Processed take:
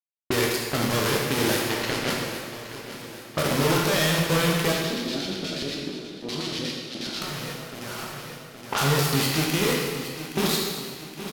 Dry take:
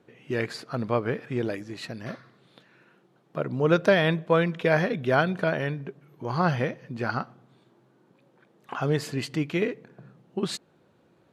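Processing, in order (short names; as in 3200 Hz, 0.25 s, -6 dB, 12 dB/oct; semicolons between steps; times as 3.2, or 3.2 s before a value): one diode to ground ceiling -23.5 dBFS; sample gate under -31.5 dBFS; HPF 43 Hz; bell 7900 Hz -9.5 dB 0.46 oct; sample leveller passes 5; low-pass opened by the level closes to 540 Hz, open at -17 dBFS; high shelf 2700 Hz +11.5 dB; compressor, threshold -16 dBFS, peak gain reduction 8 dB; feedback echo 0.819 s, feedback 53%, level -14 dB; 4.72–7.22 LFO band-pass square 8.3 Hz 290–4100 Hz; limiter -10 dBFS, peak gain reduction 5.5 dB; reverb RT60 1.7 s, pre-delay 11 ms, DRR -2.5 dB; gain -5.5 dB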